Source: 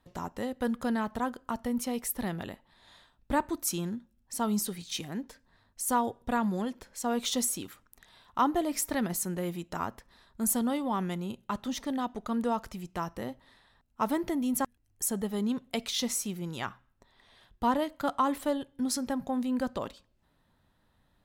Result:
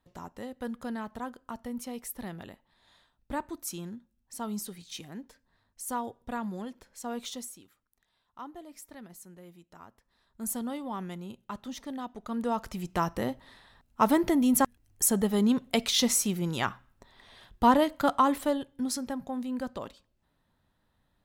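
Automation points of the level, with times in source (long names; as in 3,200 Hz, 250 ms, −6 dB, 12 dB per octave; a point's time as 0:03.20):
0:07.21 −6 dB
0:07.65 −17 dB
0:09.89 −17 dB
0:10.48 −5.5 dB
0:12.15 −5.5 dB
0:12.92 +6 dB
0:17.92 +6 dB
0:19.24 −3.5 dB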